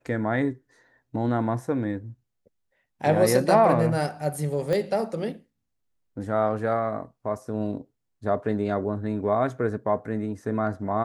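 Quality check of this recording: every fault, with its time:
0:04.73: click −15 dBFS

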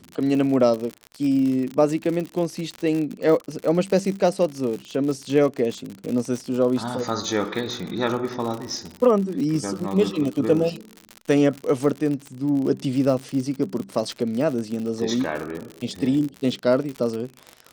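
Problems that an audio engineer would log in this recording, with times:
surface crackle 68 per second −27 dBFS

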